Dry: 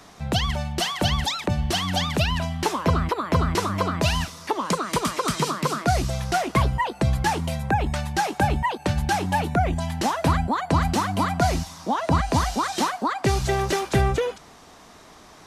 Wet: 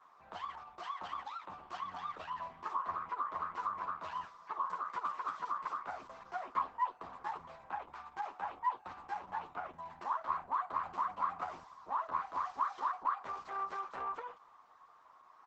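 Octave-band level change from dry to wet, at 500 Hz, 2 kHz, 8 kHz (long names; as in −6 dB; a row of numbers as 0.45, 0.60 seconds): −24.5 dB, −19.0 dB, below −35 dB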